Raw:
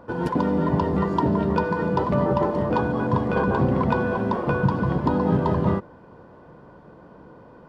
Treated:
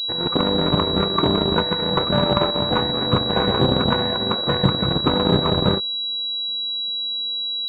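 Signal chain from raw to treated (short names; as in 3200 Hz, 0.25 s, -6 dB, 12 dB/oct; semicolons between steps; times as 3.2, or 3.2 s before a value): added harmonics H 2 -17 dB, 3 -24 dB, 5 -17 dB, 7 -15 dB, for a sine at -7 dBFS; formant shift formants +3 st; pulse-width modulation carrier 3900 Hz; gain +3 dB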